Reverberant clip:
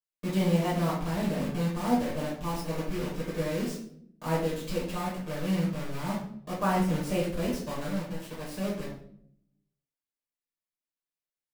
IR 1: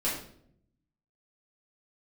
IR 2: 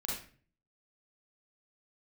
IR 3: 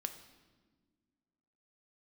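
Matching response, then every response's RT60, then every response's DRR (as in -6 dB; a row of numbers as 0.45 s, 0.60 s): 1; 0.65 s, 0.45 s, 1.5 s; -8.0 dB, -4.0 dB, 7.0 dB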